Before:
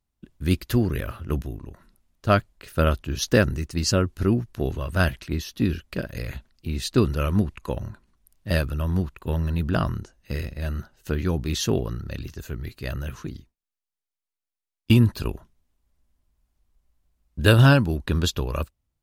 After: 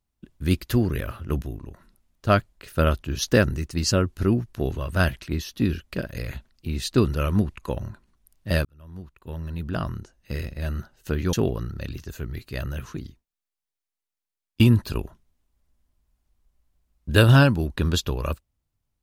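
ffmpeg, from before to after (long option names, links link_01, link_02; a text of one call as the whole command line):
ffmpeg -i in.wav -filter_complex "[0:a]asplit=3[link_01][link_02][link_03];[link_01]atrim=end=8.65,asetpts=PTS-STARTPTS,afade=type=out:start_time=8.646:duration=0.004:curve=hsin[link_04];[link_02]atrim=start=8.65:end=11.332,asetpts=PTS-STARTPTS,afade=type=in:duration=1.94[link_05];[link_03]atrim=start=11.628[link_06];[link_04][link_05]concat=n=2:v=0:a=1[link_07];[link_07][link_06]acrossfade=duration=0.004:curve1=hsin:curve2=hsin" out.wav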